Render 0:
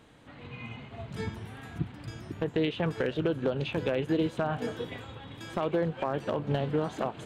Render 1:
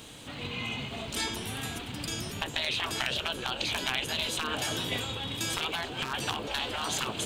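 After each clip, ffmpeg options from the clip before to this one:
-af "aexciter=amount=2.3:drive=8.5:freq=2600,afftfilt=real='re*lt(hypot(re,im),0.0708)':imag='im*lt(hypot(re,im),0.0708)':win_size=1024:overlap=0.75,volume=2.24"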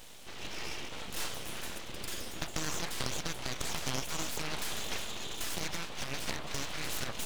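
-af "aeval=exprs='abs(val(0))':c=same,volume=0.794"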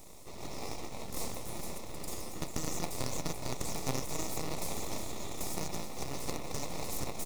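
-filter_complex "[0:a]acrossover=split=4500[s0][s1];[s0]acrusher=samples=28:mix=1:aa=0.000001[s2];[s2][s1]amix=inputs=2:normalize=0,aecho=1:1:429:0.211"

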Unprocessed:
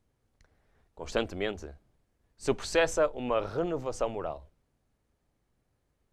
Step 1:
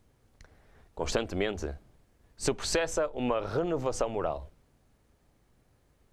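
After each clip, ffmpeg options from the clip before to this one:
-af "acompressor=threshold=0.02:ratio=12,volume=2.82"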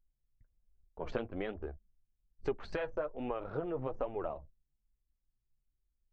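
-af "lowpass=2200,anlmdn=0.1,flanger=delay=2.4:depth=6.1:regen=44:speed=1.2:shape=sinusoidal,volume=0.668"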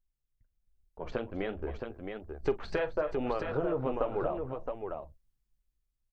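-filter_complex "[0:a]dynaudnorm=f=260:g=9:m=2.82,asplit=2[s0][s1];[s1]aecho=0:1:42|264|668:0.158|0.158|0.531[s2];[s0][s2]amix=inputs=2:normalize=0,volume=0.631"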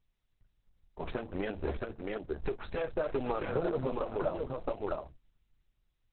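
-filter_complex "[0:a]asplit=2[s0][s1];[s1]acrusher=bits=3:mode=log:mix=0:aa=0.000001,volume=0.708[s2];[s0][s2]amix=inputs=2:normalize=0,alimiter=limit=0.0841:level=0:latency=1:release=339" -ar 48000 -c:a libopus -b:a 6k

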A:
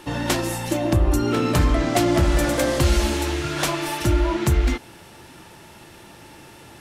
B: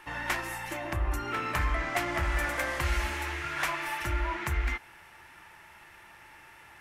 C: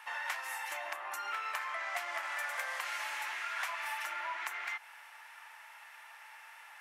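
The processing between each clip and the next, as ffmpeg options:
-af "equalizer=f=125:t=o:w=1:g=-7,equalizer=f=250:t=o:w=1:g=-10,equalizer=f=500:t=o:w=1:g=-6,equalizer=f=1000:t=o:w=1:g=4,equalizer=f=2000:t=o:w=1:g=10,equalizer=f=4000:t=o:w=1:g=-6,equalizer=f=8000:t=o:w=1:g=-4,volume=0.355"
-af "highpass=f=700:w=0.5412,highpass=f=700:w=1.3066,acompressor=threshold=0.0158:ratio=3"

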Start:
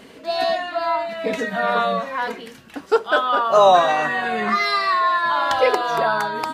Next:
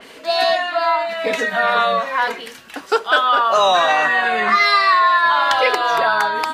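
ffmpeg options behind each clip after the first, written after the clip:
-filter_complex "[0:a]equalizer=f=120:w=0.34:g=-14.5,acrossover=split=320|1400[s0][s1][s2];[s1]alimiter=limit=0.112:level=0:latency=1:release=113[s3];[s0][s3][s2]amix=inputs=3:normalize=0,adynamicequalizer=threshold=0.0126:dfrequency=4400:dqfactor=0.7:tfrequency=4400:tqfactor=0.7:attack=5:release=100:ratio=0.375:range=2.5:mode=cutabove:tftype=highshelf,volume=2.51"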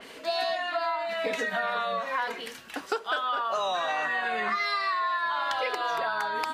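-af "acompressor=threshold=0.0891:ratio=6,volume=0.562"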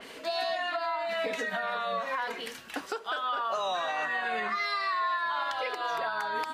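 -af "alimiter=limit=0.0794:level=0:latency=1:release=196"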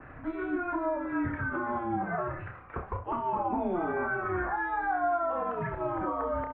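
-af "aeval=exprs='val(0)+0.000891*sin(2*PI*430*n/s)':c=same,highpass=f=270:t=q:w=0.5412,highpass=f=270:t=q:w=1.307,lowpass=f=2100:t=q:w=0.5176,lowpass=f=2100:t=q:w=0.7071,lowpass=f=2100:t=q:w=1.932,afreqshift=-360,aecho=1:1:30|66:0.473|0.224"

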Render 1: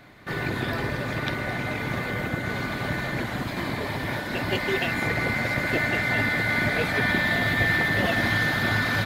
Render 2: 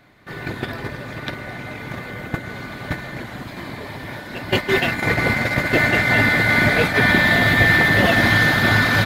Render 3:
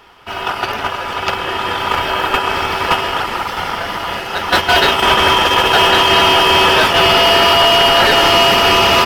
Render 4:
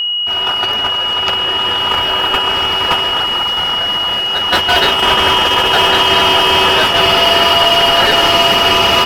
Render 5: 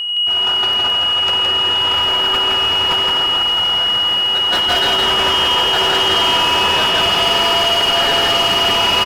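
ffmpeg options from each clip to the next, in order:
-af "agate=range=0.282:threshold=0.0562:ratio=16:detection=peak,volume=2.51"
-af "dynaudnorm=f=250:g=13:m=3.76,apsyclip=4.73,aeval=exprs='val(0)*sin(2*PI*1100*n/s)':c=same,volume=0.75"
-af "aeval=exprs='val(0)+0.224*sin(2*PI*2900*n/s)':c=same,volume=0.891"
-filter_complex "[0:a]asoftclip=type=tanh:threshold=0.447,asplit=2[s0][s1];[s1]aecho=0:1:90.38|166.2:0.316|0.708[s2];[s0][s2]amix=inputs=2:normalize=0,volume=0.596"

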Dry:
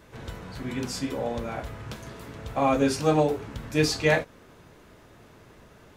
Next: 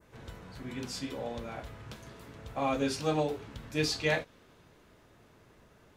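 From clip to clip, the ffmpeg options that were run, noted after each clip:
-af "adynamicequalizer=threshold=0.00562:dfrequency=3600:dqfactor=1.1:tfrequency=3600:tqfactor=1.1:attack=5:release=100:ratio=0.375:range=3:mode=boostabove:tftype=bell,volume=0.398"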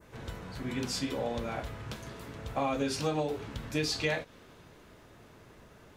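-af "acompressor=threshold=0.0251:ratio=6,volume=1.78"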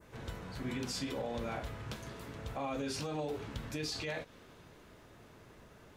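-af "alimiter=level_in=1.41:limit=0.0631:level=0:latency=1:release=44,volume=0.708,volume=0.794"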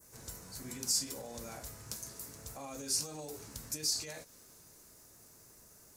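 -af "aexciter=amount=13.4:drive=3.8:freq=4900,volume=0.398"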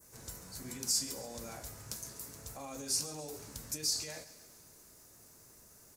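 -af "aecho=1:1:137|274|411|548|685:0.158|0.0808|0.0412|0.021|0.0107"

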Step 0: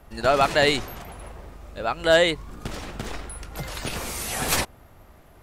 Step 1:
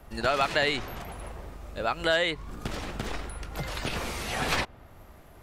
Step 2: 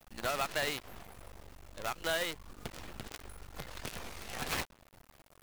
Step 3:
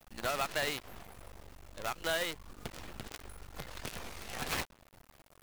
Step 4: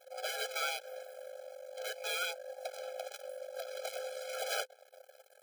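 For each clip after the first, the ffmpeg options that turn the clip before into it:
-filter_complex "[0:a]acrossover=split=1100|2300|4900[s0][s1][s2][s3];[s0]acompressor=threshold=0.0398:ratio=4[s4];[s1]acompressor=threshold=0.0398:ratio=4[s5];[s2]acompressor=threshold=0.0282:ratio=4[s6];[s3]acompressor=threshold=0.00355:ratio=4[s7];[s4][s5][s6][s7]amix=inputs=4:normalize=0"
-af "acrusher=bits=5:dc=4:mix=0:aa=0.000001,volume=0.355"
-af anull
-af "afftfilt=real='real(if(lt(b,1008),b+24*(1-2*mod(floor(b/24),2)),b),0)':imag='imag(if(lt(b,1008),b+24*(1-2*mod(floor(b/24),2)),b),0)':win_size=2048:overlap=0.75,afftfilt=real='re*eq(mod(floor(b*sr/1024/430),2),1)':imag='im*eq(mod(floor(b*sr/1024/430),2),1)':win_size=1024:overlap=0.75,volume=1.41"

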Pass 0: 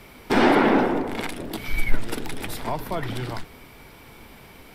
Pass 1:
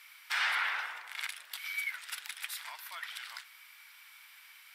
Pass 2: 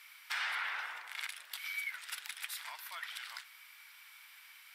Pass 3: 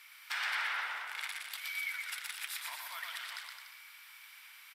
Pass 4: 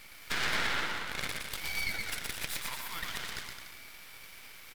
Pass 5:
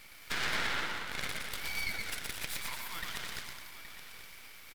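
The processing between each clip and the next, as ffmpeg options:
-af "highpass=f=1400:w=0.5412,highpass=f=1400:w=1.3066,volume=0.631"
-af "acompressor=threshold=0.0158:ratio=2,volume=0.891"
-af "aecho=1:1:120|216|292.8|354.2|403.4:0.631|0.398|0.251|0.158|0.1"
-af "aeval=exprs='max(val(0),0)':c=same,volume=2.51"
-af "aecho=1:1:822:0.224,volume=0.794"

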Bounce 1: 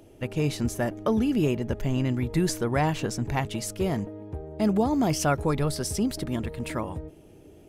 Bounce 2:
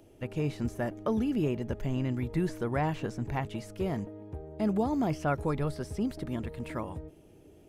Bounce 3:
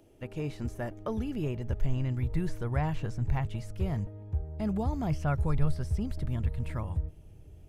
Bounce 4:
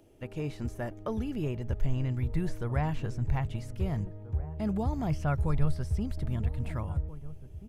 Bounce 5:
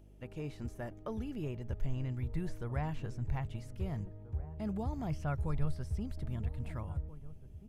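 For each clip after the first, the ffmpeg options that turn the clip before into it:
-filter_complex "[0:a]acrossover=split=2600[s0][s1];[s1]acompressor=threshold=0.00447:ratio=4:attack=1:release=60[s2];[s0][s2]amix=inputs=2:normalize=0,volume=0.562"
-af "asubboost=boost=10:cutoff=97,volume=0.708"
-filter_complex "[0:a]asplit=2[s0][s1];[s1]adelay=1633,volume=0.158,highshelf=f=4000:g=-36.7[s2];[s0][s2]amix=inputs=2:normalize=0"
-af "aeval=exprs='val(0)+0.00316*(sin(2*PI*50*n/s)+sin(2*PI*2*50*n/s)/2+sin(2*PI*3*50*n/s)/3+sin(2*PI*4*50*n/s)/4+sin(2*PI*5*50*n/s)/5)':c=same,volume=0.473"

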